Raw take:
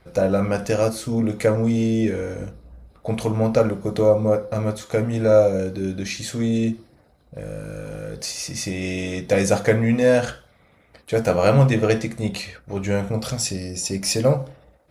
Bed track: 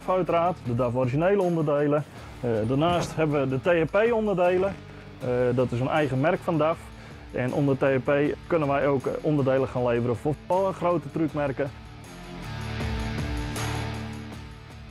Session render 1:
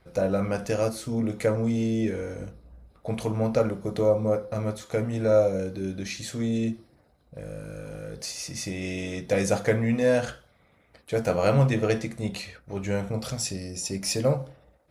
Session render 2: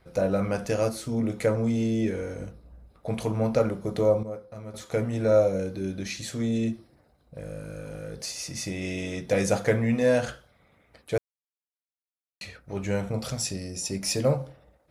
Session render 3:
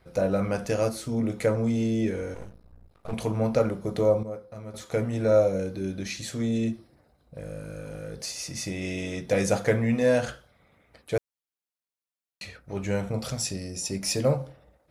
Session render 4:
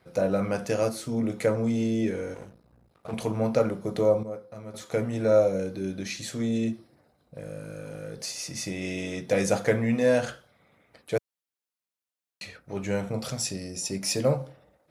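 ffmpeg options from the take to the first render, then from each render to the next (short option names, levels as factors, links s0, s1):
-af "volume=0.531"
-filter_complex "[0:a]asplit=5[s0][s1][s2][s3][s4];[s0]atrim=end=4.232[s5];[s1]atrim=start=4.228:end=4.742,asetpts=PTS-STARTPTS,volume=0.266[s6];[s2]atrim=start=4.738:end=11.18,asetpts=PTS-STARTPTS,afade=t=out:st=6.438:d=0.004:c=hsin[s7];[s3]atrim=start=11.18:end=12.41,asetpts=PTS-STARTPTS,volume=0[s8];[s4]atrim=start=12.41,asetpts=PTS-STARTPTS,afade=t=in:d=0.004:c=hsin[s9];[s5][s6]acrossfade=d=0.004:c1=hsin:c2=hsin[s10];[s7][s8][s9]concat=n=3:v=0:a=1[s11];[s10][s11]acrossfade=d=0.004:c1=hsin:c2=hsin"
-filter_complex "[0:a]asettb=1/sr,asplit=3[s0][s1][s2];[s0]atrim=end=2.344[s3];[s1]atrim=start=2.34:end=3.13,asetpts=PTS-STARTPTS,afade=t=in:d=0.004:c=qsin,afade=t=out:st=0.786:d=0.004:c=qsin,aeval=exprs='max(val(0),0)':c=same[s4];[s2]atrim=start=3.126[s5];[s3][s4]acrossfade=d=0.004:c1=hsin:c2=qsin[s6];[s6][s5]acrossfade=d=0.004:c1=qsin:c2=hsin"
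-af "highpass=110"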